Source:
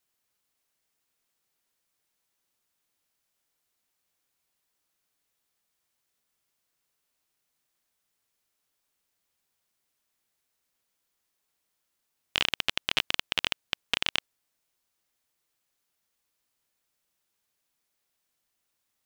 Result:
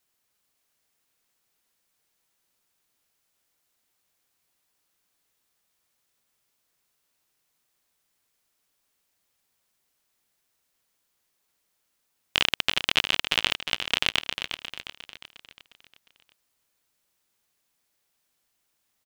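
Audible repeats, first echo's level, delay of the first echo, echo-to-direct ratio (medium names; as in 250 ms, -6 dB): 5, -8.0 dB, 356 ms, -7.0 dB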